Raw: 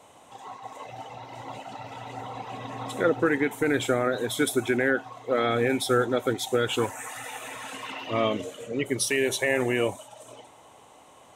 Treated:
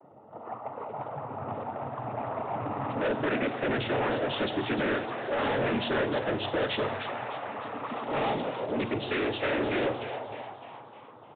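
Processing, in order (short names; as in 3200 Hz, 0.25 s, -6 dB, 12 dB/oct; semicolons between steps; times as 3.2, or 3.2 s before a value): low-pass opened by the level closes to 470 Hz, open at -22 dBFS; bell 600 Hz +4 dB; in parallel at +0.5 dB: compressor, threshold -32 dBFS, peak gain reduction 15 dB; on the sum: noise vocoder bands 12; soft clip -23.5 dBFS, distortion -7 dB; frequency-shifting echo 0.304 s, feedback 52%, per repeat +130 Hz, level -10 dB; on a send at -13 dB: reverb RT60 1.1 s, pre-delay 35 ms; on the sum: downsampling 8000 Hz; gain -1.5 dB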